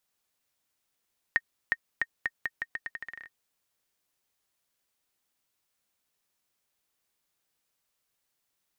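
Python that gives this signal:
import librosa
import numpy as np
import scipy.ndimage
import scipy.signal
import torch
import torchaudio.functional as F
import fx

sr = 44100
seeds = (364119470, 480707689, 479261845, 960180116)

y = fx.bouncing_ball(sr, first_gap_s=0.36, ratio=0.82, hz=1850.0, decay_ms=45.0, level_db=-11.5)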